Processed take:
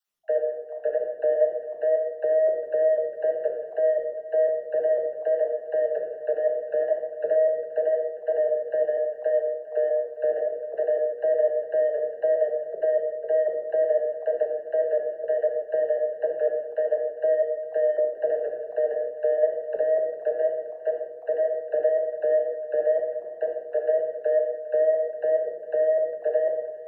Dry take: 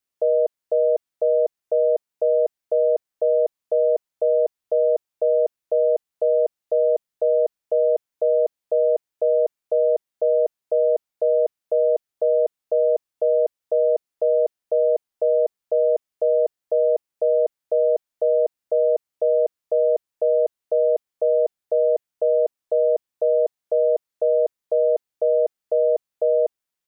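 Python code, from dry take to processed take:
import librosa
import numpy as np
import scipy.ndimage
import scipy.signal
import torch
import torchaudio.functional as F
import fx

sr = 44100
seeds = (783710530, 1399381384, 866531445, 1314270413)

p1 = fx.spec_dropout(x, sr, seeds[0], share_pct=38)
p2 = fx.hum_notches(p1, sr, base_hz=60, count=8)
p3 = fx.level_steps(p2, sr, step_db=11)
p4 = 10.0 ** (-16.0 / 20.0) * np.tanh(p3 / 10.0 ** (-16.0 / 20.0))
p5 = fx.dispersion(p4, sr, late='lows', ms=40.0, hz=500.0)
p6 = fx.wow_flutter(p5, sr, seeds[1], rate_hz=2.1, depth_cents=27.0)
p7 = p6 + fx.echo_single(p6, sr, ms=406, db=-17.0, dry=0)
y = fx.room_shoebox(p7, sr, seeds[2], volume_m3=460.0, walls='mixed', distance_m=1.3)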